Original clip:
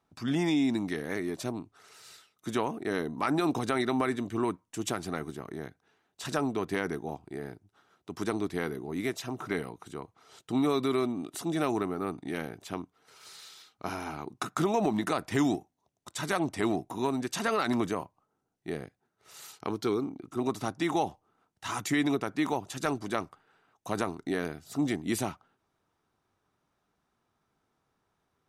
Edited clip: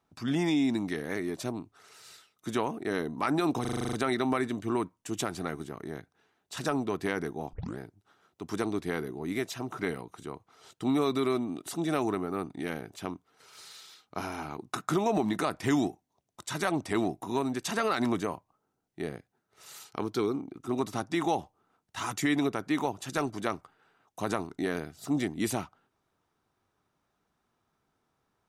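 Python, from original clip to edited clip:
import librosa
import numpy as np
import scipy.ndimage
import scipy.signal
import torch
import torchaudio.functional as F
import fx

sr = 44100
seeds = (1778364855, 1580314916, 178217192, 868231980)

y = fx.edit(x, sr, fx.stutter(start_s=3.61, slice_s=0.04, count=9),
    fx.tape_start(start_s=7.21, length_s=0.25), tone=tone)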